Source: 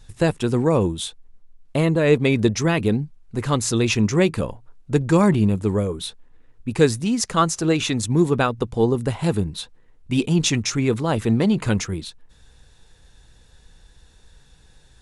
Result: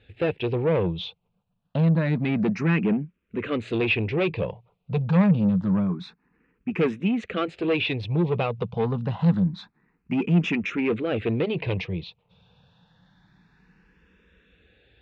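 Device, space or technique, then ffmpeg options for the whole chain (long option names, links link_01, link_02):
barber-pole phaser into a guitar amplifier: -filter_complex "[0:a]asplit=2[link_01][link_02];[link_02]afreqshift=0.27[link_03];[link_01][link_03]amix=inputs=2:normalize=1,asoftclip=type=tanh:threshold=-20.5dB,highpass=90,equalizer=frequency=180:width_type=q:width=4:gain=10,equalizer=frequency=470:width_type=q:width=4:gain=4,equalizer=frequency=2500:width_type=q:width=4:gain=7,lowpass=frequency=3500:width=0.5412,lowpass=frequency=3500:width=1.3066"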